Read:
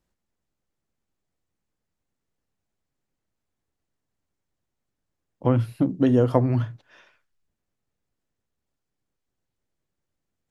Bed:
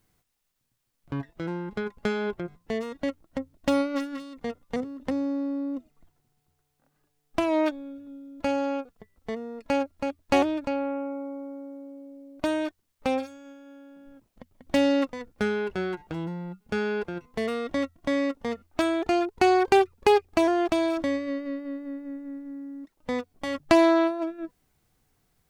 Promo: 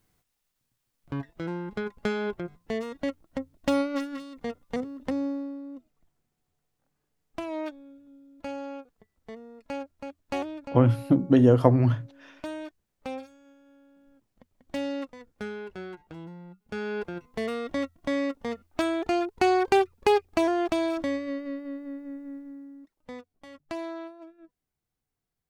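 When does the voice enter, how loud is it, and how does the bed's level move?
5.30 s, +1.0 dB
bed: 0:05.26 −1 dB
0:05.62 −9.5 dB
0:16.56 −9.5 dB
0:17.02 −2 dB
0:22.35 −2 dB
0:23.51 −17 dB

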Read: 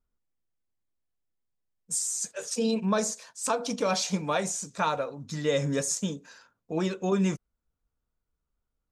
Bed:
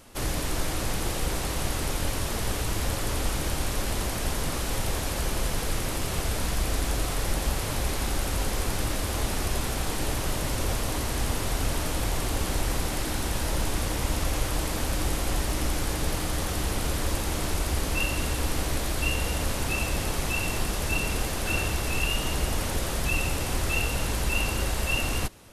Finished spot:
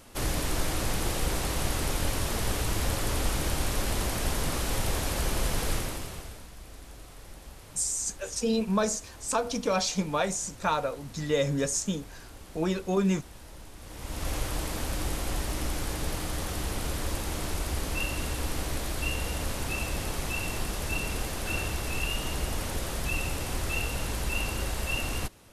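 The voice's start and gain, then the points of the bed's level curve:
5.85 s, 0.0 dB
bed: 0:05.74 −0.5 dB
0:06.49 −19.5 dB
0:13.77 −19.5 dB
0:14.29 −4 dB

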